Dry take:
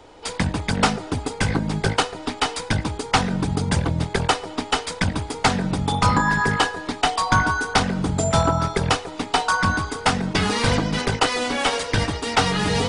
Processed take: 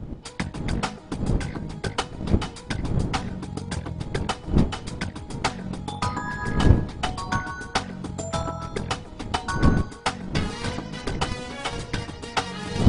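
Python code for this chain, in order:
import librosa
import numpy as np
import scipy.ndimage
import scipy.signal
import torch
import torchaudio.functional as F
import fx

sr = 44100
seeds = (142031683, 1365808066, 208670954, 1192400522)

y = fx.dmg_wind(x, sr, seeds[0], corner_hz=190.0, level_db=-19.0)
y = fx.transient(y, sr, attack_db=7, sustain_db=-1)
y = F.gain(torch.from_numpy(y), -11.5).numpy()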